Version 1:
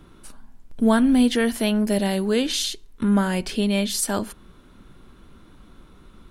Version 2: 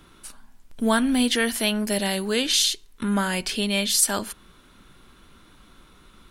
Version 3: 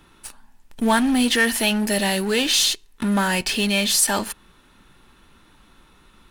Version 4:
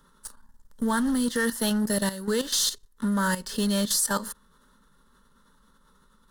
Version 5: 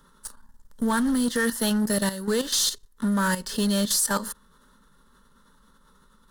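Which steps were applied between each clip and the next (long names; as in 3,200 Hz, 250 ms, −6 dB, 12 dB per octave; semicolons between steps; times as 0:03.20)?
tilt shelving filter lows −5.5 dB
hollow resonant body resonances 870/1,800/2,600 Hz, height 8 dB, ringing for 30 ms; in parallel at −11 dB: fuzz pedal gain 30 dB, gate −37 dBFS; on the sum: level −1.5 dB
phaser with its sweep stopped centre 490 Hz, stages 8; output level in coarse steps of 12 dB
soft clipping −17 dBFS, distortion −23 dB; level +2.5 dB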